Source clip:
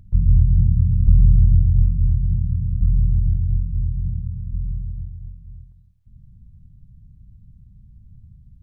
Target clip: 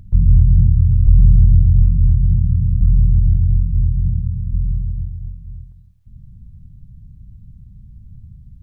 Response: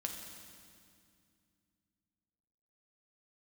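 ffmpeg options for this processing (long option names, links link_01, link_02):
-filter_complex "[0:a]asplit=3[link_01][link_02][link_03];[link_01]afade=type=out:start_time=0.7:duration=0.02[link_04];[link_02]equalizer=frequency=210:width_type=o:width=0.51:gain=-13.5,afade=type=in:start_time=0.7:duration=0.02,afade=type=out:start_time=1.17:duration=0.02[link_05];[link_03]afade=type=in:start_time=1.17:duration=0.02[link_06];[link_04][link_05][link_06]amix=inputs=3:normalize=0,asplit=2[link_07][link_08];[link_08]alimiter=limit=-14.5dB:level=0:latency=1:release=32,volume=1dB[link_09];[link_07][link_09]amix=inputs=2:normalize=0"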